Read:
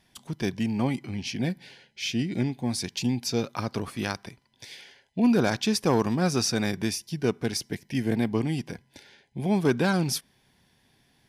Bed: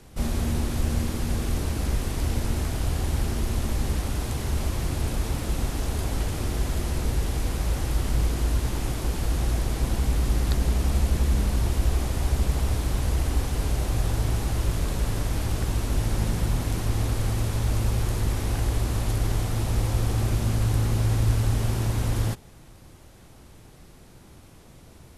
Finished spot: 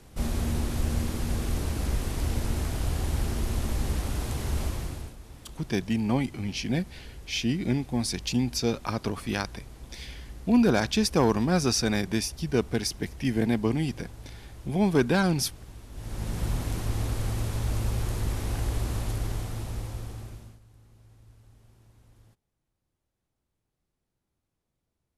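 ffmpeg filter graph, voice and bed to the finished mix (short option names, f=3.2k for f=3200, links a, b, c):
-filter_complex "[0:a]adelay=5300,volume=0.5dB[a];[1:a]volume=13dB,afade=t=out:st=4.62:d=0.53:silence=0.141254,afade=t=in:st=15.92:d=0.55:silence=0.16788,afade=t=out:st=18.91:d=1.69:silence=0.0354813[b];[a][b]amix=inputs=2:normalize=0"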